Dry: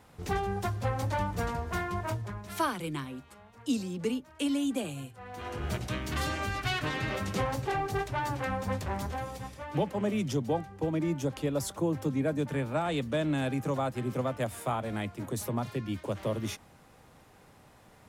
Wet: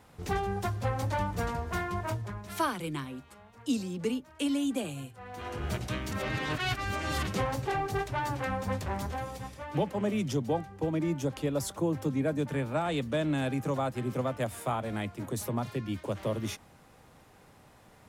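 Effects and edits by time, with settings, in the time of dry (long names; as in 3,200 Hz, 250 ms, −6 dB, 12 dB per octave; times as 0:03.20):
0:06.12–0:07.27: reverse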